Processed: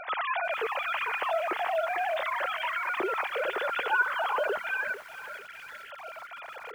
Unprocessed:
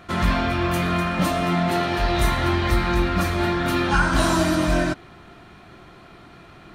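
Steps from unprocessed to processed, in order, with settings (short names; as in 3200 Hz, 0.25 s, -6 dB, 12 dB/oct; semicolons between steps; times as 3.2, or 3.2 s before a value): sine-wave speech; spectral delete 4.57–5.91, 240–1300 Hz; compressor 2:1, threshold -42 dBFS, peak gain reduction 19 dB; lo-fi delay 0.447 s, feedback 55%, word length 8-bit, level -12.5 dB; gain +4 dB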